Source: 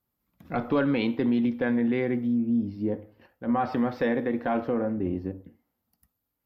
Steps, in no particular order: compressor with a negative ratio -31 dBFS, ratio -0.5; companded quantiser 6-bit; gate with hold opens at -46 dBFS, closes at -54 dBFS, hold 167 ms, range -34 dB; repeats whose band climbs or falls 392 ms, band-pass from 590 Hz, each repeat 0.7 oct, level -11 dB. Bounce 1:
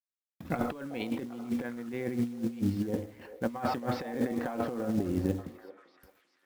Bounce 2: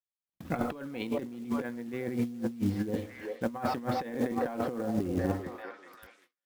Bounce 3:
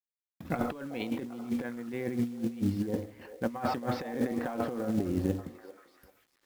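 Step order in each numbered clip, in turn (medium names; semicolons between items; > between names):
gate with hold > compressor with a negative ratio > companded quantiser > repeats whose band climbs or falls; companded quantiser > repeats whose band climbs or falls > gate with hold > compressor with a negative ratio; gate with hold > compressor with a negative ratio > repeats whose band climbs or falls > companded quantiser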